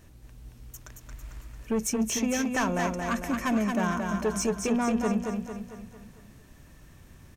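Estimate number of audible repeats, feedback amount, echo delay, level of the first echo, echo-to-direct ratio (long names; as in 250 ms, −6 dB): 5, 49%, 225 ms, −4.5 dB, −3.5 dB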